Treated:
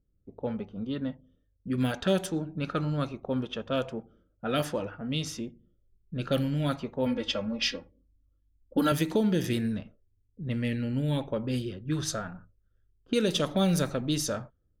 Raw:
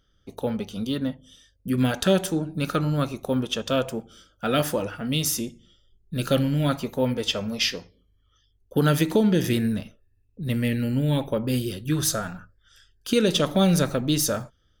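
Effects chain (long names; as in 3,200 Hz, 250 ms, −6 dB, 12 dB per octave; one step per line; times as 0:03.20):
low-pass that shuts in the quiet parts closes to 370 Hz, open at −17.5 dBFS
0:07.06–0:08.92: comb filter 3.6 ms, depth 88%
level −5.5 dB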